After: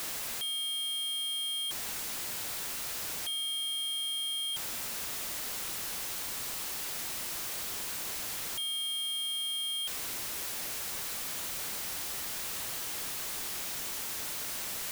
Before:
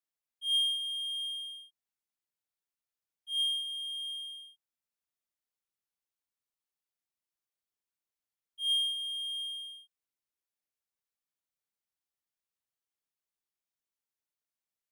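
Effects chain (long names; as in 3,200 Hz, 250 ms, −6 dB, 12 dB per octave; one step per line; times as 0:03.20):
sign of each sample alone
level +6.5 dB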